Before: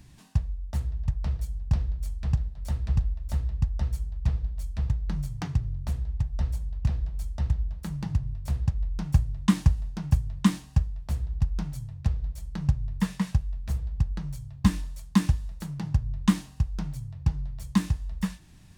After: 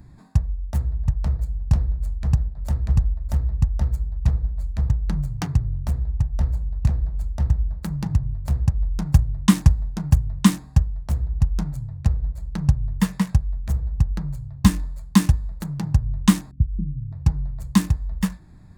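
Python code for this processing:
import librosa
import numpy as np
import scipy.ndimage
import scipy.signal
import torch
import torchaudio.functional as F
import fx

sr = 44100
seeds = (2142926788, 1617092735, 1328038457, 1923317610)

y = fx.cheby2_lowpass(x, sr, hz=640.0, order=4, stop_db=40, at=(16.51, 17.12))
y = fx.wiener(y, sr, points=15)
y = fx.high_shelf(y, sr, hz=6800.0, db=10.0)
y = y * 10.0 ** (6.0 / 20.0)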